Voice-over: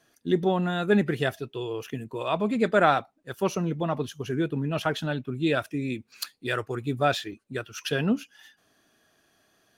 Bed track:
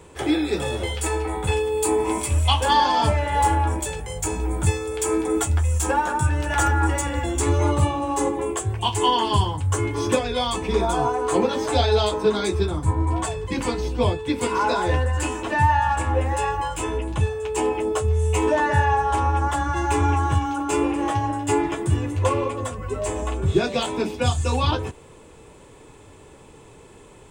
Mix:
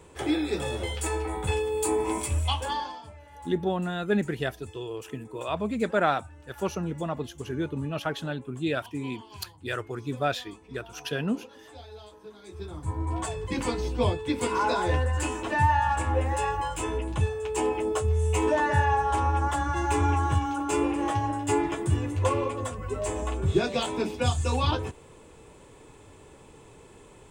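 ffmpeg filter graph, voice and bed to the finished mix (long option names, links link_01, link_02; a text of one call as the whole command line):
ffmpeg -i stem1.wav -i stem2.wav -filter_complex "[0:a]adelay=3200,volume=-3.5dB[link_01];[1:a]volume=17.5dB,afade=type=out:start_time=2.25:duration=0.77:silence=0.0841395,afade=type=in:start_time=12.43:duration=1.04:silence=0.0749894[link_02];[link_01][link_02]amix=inputs=2:normalize=0" out.wav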